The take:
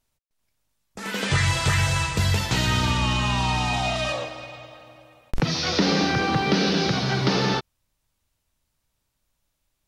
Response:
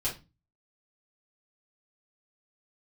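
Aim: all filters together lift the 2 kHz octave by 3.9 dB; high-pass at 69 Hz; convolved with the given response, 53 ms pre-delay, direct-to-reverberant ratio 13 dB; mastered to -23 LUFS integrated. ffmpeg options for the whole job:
-filter_complex "[0:a]highpass=69,equalizer=f=2000:t=o:g=5,asplit=2[s0][s1];[1:a]atrim=start_sample=2205,adelay=53[s2];[s1][s2]afir=irnorm=-1:irlink=0,volume=0.126[s3];[s0][s3]amix=inputs=2:normalize=0,volume=0.841"

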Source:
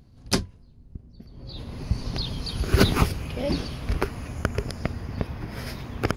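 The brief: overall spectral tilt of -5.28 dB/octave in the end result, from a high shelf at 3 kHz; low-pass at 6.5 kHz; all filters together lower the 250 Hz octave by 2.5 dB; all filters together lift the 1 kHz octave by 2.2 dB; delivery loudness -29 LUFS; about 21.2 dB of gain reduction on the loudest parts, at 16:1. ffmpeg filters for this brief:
-af "lowpass=6500,equalizer=f=250:t=o:g=-3.5,equalizer=f=1000:t=o:g=4,highshelf=f=3000:g=-6.5,acompressor=threshold=0.0178:ratio=16,volume=4.47"

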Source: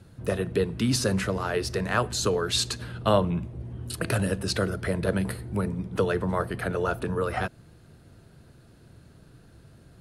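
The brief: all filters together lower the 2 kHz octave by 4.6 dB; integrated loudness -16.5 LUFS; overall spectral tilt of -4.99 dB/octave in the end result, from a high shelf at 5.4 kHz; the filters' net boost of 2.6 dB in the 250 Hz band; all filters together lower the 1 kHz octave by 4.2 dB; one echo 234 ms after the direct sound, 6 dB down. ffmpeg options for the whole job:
-af "equalizer=f=250:t=o:g=4,equalizer=f=1000:t=o:g=-4.5,equalizer=f=2000:t=o:g=-5,highshelf=f=5400:g=4.5,aecho=1:1:234:0.501,volume=2.99"

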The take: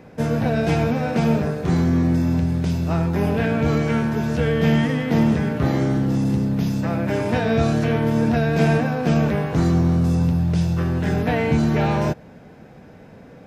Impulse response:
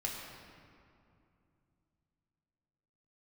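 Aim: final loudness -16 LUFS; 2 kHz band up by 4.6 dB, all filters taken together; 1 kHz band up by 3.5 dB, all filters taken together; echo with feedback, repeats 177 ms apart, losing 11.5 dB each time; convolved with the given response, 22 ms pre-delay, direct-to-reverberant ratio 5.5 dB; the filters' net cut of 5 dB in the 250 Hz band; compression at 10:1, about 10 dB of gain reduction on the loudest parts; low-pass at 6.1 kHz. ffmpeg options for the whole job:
-filter_complex "[0:a]lowpass=6100,equalizer=f=250:t=o:g=-7.5,equalizer=f=1000:t=o:g=4.5,equalizer=f=2000:t=o:g=4.5,acompressor=threshold=0.0501:ratio=10,aecho=1:1:177|354|531:0.266|0.0718|0.0194,asplit=2[s0][s1];[1:a]atrim=start_sample=2205,adelay=22[s2];[s1][s2]afir=irnorm=-1:irlink=0,volume=0.398[s3];[s0][s3]amix=inputs=2:normalize=0,volume=4.22"

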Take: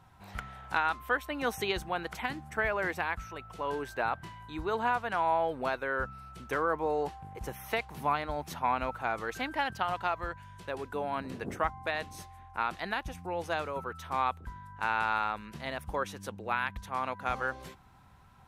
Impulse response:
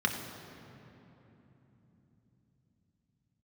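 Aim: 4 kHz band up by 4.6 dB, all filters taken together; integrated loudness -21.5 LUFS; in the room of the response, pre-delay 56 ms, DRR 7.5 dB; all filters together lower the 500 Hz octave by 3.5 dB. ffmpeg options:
-filter_complex "[0:a]equalizer=f=500:t=o:g=-4.5,equalizer=f=4000:t=o:g=6,asplit=2[s0][s1];[1:a]atrim=start_sample=2205,adelay=56[s2];[s1][s2]afir=irnorm=-1:irlink=0,volume=0.15[s3];[s0][s3]amix=inputs=2:normalize=0,volume=3.76"

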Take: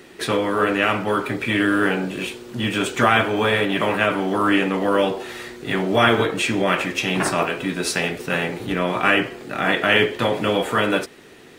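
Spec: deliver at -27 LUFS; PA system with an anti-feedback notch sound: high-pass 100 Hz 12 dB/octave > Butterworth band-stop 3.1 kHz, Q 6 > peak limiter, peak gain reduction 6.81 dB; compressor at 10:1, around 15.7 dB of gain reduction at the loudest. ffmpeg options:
-af "acompressor=threshold=0.0398:ratio=10,highpass=100,asuperstop=centerf=3100:order=8:qfactor=6,volume=2.11,alimiter=limit=0.141:level=0:latency=1"

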